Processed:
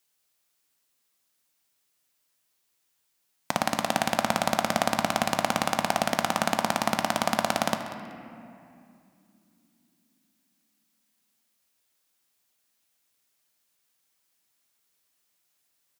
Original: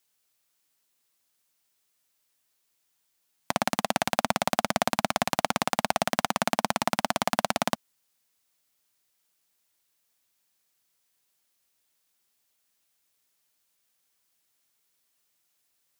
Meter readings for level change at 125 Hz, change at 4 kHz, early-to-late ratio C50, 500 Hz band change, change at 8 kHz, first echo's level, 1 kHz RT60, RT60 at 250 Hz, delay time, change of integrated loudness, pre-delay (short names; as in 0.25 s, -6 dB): +1.5 dB, +0.5 dB, 7.5 dB, +1.0 dB, +0.5 dB, -16.0 dB, 2.3 s, 4.4 s, 0.189 s, +1.0 dB, 3 ms